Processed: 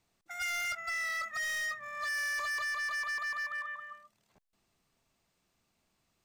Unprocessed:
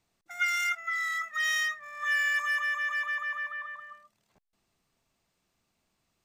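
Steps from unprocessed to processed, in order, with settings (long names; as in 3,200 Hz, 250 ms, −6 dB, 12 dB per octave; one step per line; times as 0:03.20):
0:00.61–0:02.64: low-shelf EQ 460 Hz +11 dB
gain into a clipping stage and back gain 33 dB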